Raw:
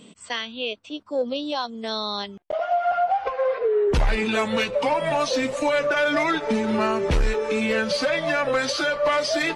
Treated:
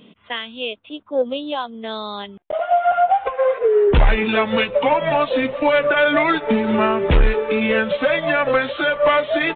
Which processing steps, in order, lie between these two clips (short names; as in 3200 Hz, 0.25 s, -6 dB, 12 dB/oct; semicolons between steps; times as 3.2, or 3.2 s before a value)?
downsampling 8000 Hz; upward expander 1.5:1, over -30 dBFS; gain +7.5 dB